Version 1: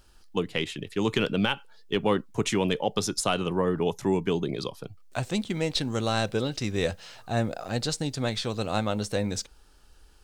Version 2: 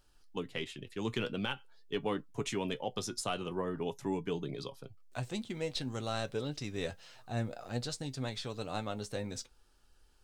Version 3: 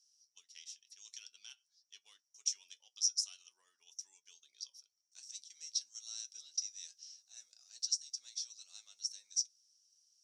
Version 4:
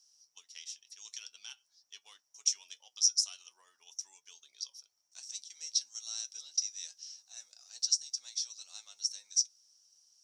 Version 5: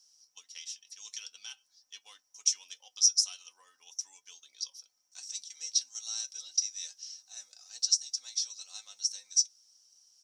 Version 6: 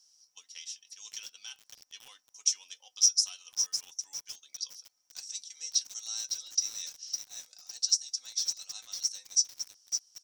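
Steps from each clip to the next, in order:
flange 0.46 Hz, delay 6.7 ms, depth 1.8 ms, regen +56%; trim -5.5 dB
ladder band-pass 5.8 kHz, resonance 90%; trim +8 dB
peaking EQ 830 Hz +7.5 dB 1.4 oct; trim +5.5 dB
comb 3.9 ms, depth 49%; trim +2 dB
bit-crushed delay 557 ms, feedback 35%, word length 7-bit, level -6 dB

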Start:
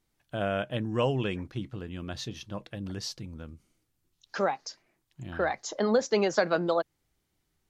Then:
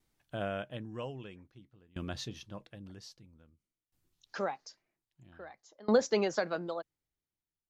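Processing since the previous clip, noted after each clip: sawtooth tremolo in dB decaying 0.51 Hz, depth 26 dB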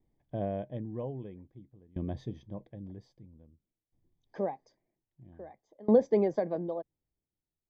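boxcar filter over 32 samples; trim +5 dB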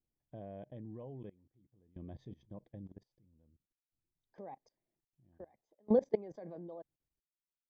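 level held to a coarse grid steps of 22 dB; trim -2.5 dB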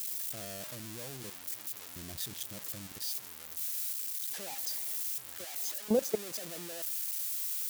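zero-crossing glitches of -26.5 dBFS

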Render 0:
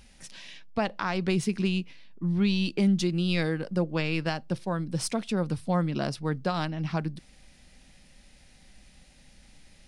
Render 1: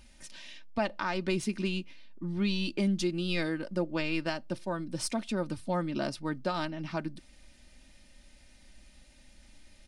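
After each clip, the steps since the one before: comb 3.3 ms, depth 53%; trim -3.5 dB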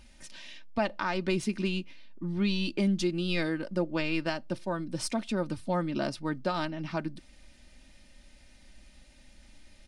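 treble shelf 7.9 kHz -4.5 dB; trim +1.5 dB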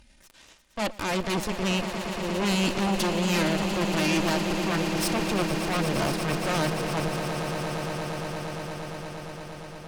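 Chebyshev shaper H 8 -9 dB, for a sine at -16.5 dBFS; echo with a slow build-up 116 ms, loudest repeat 8, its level -12.5 dB; transient shaper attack -8 dB, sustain -1 dB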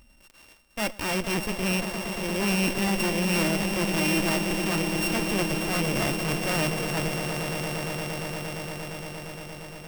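sorted samples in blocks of 16 samples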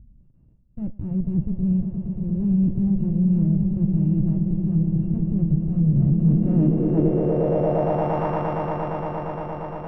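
low-pass sweep 140 Hz -> 960 Hz, 5.92–8.25 s; trim +8 dB

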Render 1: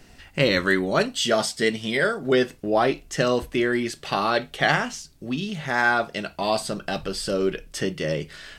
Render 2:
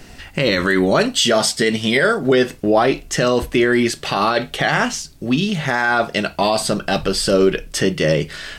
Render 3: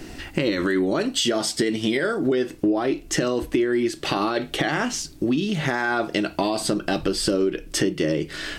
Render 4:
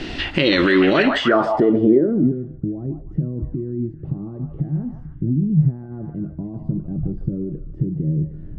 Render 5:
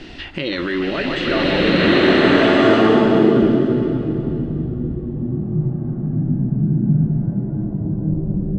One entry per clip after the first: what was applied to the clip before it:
loudness maximiser +14.5 dB; trim -4.5 dB
peaking EQ 320 Hz +13.5 dB 0.44 oct; compression 5:1, threshold -20 dBFS, peak gain reduction 15 dB
repeats whose band climbs or falls 148 ms, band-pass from 910 Hz, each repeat 0.7 oct, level -3 dB; peak limiter -15 dBFS, peak gain reduction 7.5 dB; low-pass sweep 3.5 kHz -> 140 Hz, 0.91–2.41 s; trim +8 dB
swelling reverb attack 1510 ms, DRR -10 dB; trim -7 dB

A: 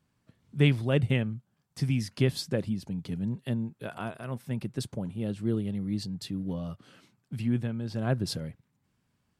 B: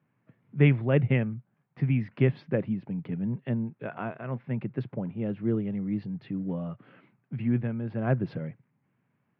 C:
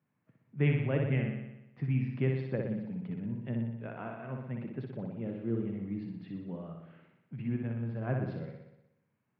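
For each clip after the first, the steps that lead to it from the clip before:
elliptic band-pass 120–2300 Hz, stop band 50 dB; trim +2.5 dB
flutter echo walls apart 10.4 m, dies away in 0.91 s; trim -8 dB

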